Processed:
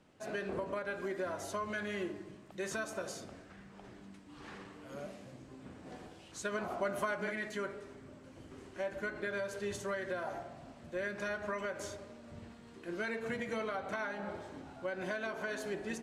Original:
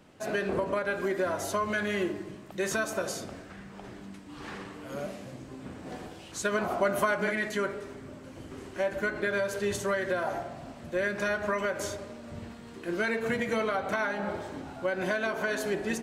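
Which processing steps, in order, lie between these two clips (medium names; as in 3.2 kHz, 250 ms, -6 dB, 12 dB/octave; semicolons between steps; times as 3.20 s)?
low-pass 11 kHz 12 dB/octave; trim -8.5 dB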